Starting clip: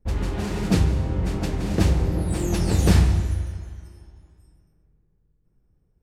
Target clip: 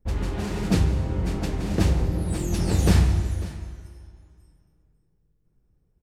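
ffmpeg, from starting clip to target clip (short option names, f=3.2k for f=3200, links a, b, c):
-filter_complex "[0:a]asettb=1/sr,asplit=3[a][b][c];[a]atrim=end=2.024[d];[b]atrim=start=2.02:end=2.59,asetpts=PTS-STARTPTS,afade=t=in:d=0.004:c=qsin,afade=t=out:st=0.566:d=0.004:c=qsin,acrossover=split=250|3000[e][f][g];[f]acompressor=threshold=-31dB:ratio=6[h];[e][h][g]amix=inputs=3:normalize=0[i];[c]atrim=start=2.586[j];[d][i]acrossfade=d=0.004:c1=hsin:c2=qsin[k];[k][j]acrossfade=d=0.004:c1=qsin:c2=hsin,asplit=2[l][m];[m]aecho=0:1:547:0.133[n];[l][n]amix=inputs=2:normalize=0,volume=-1.5dB"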